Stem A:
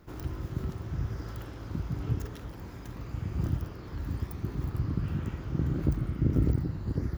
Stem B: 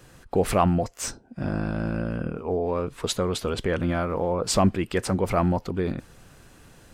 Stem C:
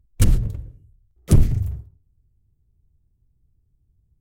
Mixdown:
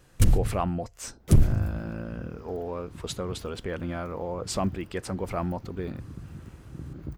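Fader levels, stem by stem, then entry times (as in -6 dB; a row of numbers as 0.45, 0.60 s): -10.5, -7.5, -4.0 dB; 1.20, 0.00, 0.00 s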